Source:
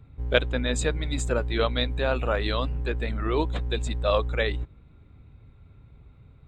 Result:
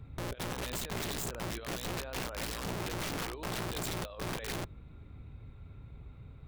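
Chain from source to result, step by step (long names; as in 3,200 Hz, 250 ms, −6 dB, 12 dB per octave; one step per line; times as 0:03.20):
compressor whose output falls as the input rises −30 dBFS, ratio −0.5
wrap-around overflow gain 29 dB
level −3 dB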